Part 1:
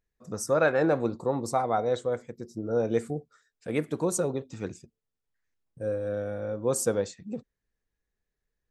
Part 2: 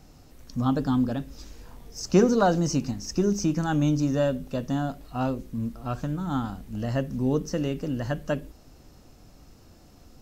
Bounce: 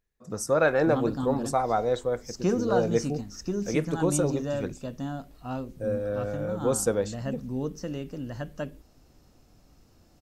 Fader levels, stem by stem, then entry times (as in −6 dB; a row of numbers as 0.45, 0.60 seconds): +1.0, −6.5 decibels; 0.00, 0.30 seconds